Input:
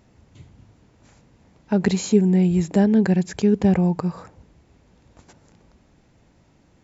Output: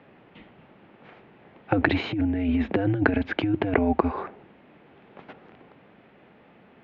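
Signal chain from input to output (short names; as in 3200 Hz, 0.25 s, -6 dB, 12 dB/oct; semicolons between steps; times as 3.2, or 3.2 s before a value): negative-ratio compressor -19 dBFS, ratio -0.5; mistuned SSB -100 Hz 300–3200 Hz; gain +6 dB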